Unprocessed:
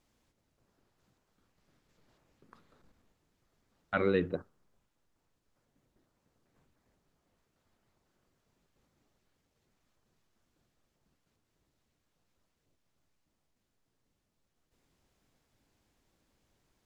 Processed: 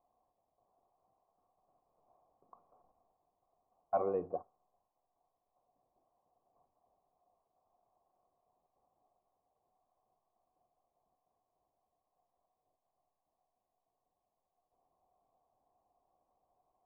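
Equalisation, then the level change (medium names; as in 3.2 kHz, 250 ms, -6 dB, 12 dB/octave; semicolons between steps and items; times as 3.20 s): cascade formant filter a; bass shelf 210 Hz +9.5 dB; peaking EQ 500 Hz +11.5 dB 1.9 oct; +4.0 dB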